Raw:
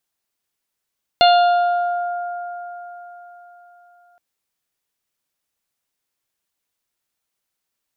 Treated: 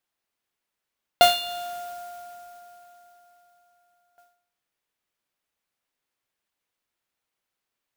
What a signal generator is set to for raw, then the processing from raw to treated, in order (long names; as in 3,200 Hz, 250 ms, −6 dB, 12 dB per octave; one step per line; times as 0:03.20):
harmonic partials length 2.97 s, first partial 704 Hz, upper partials −12/−18/−9.5/−10.5/−9.5 dB, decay 4.01 s, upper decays 4.60/0.31/0.91/1.00/0.84 s, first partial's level −8.5 dB
bass and treble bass −3 dB, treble −8 dB
hum removal 78.23 Hz, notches 24
noise that follows the level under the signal 12 dB